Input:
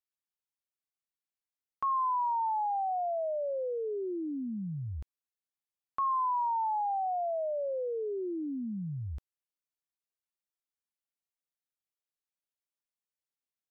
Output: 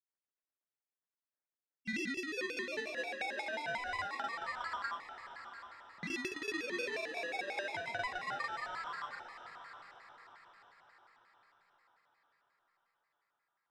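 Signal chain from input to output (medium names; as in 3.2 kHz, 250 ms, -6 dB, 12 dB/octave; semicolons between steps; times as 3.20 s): Chebyshev low-pass 1 kHz, order 5; in parallel at +1.5 dB: peak limiter -36.5 dBFS, peak gain reduction 10 dB; on the sum: ring modulator 1.3 kHz; saturation -36 dBFS, distortion -10 dB; granulator, pitch spread up and down by 0 st; tremolo saw down 7.3 Hz, depth 80%; granulator, pitch spread up and down by 0 st; echo that smears into a reverb 699 ms, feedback 46%, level -10 dB; vibrato with a chosen wave square 5.6 Hz, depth 250 cents; trim +5 dB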